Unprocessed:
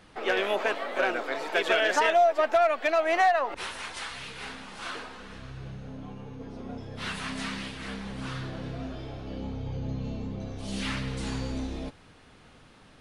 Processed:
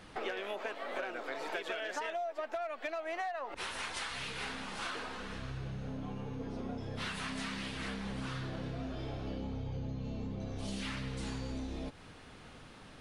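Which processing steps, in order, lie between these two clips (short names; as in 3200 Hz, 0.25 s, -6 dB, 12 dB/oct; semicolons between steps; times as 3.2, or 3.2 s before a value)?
compressor 10:1, threshold -37 dBFS, peak gain reduction 19 dB; gain +1.5 dB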